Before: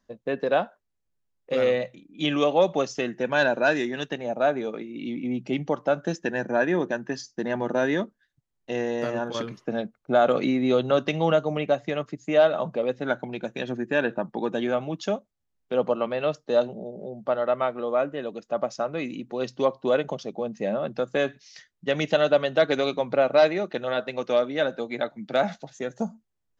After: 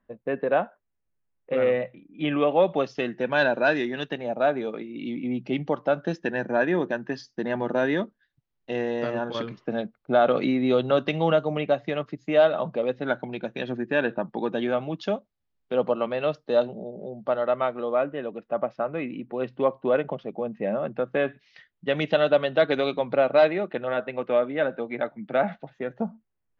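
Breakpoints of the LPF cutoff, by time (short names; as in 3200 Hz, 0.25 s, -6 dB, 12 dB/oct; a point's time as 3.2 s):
LPF 24 dB/oct
2.39 s 2600 Hz
3.03 s 4600 Hz
17.74 s 4600 Hz
18.31 s 2700 Hz
21.1 s 2700 Hz
22.03 s 4000 Hz
23.28 s 4000 Hz
23.89 s 2700 Hz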